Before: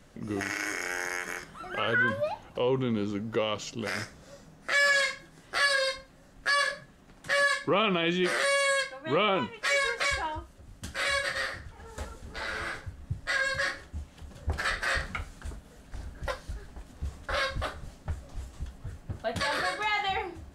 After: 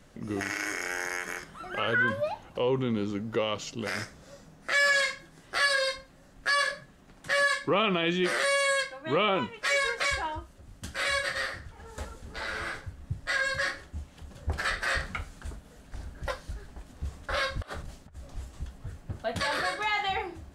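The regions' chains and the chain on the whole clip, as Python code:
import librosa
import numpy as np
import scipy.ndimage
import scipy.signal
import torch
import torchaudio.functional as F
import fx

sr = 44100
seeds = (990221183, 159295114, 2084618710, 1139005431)

y = fx.chain(x, sr, fx.over_compress(threshold_db=-42.0, ratio=-1.0),
    fx.band_widen(depth_pct=100), at=(17.62, 18.3))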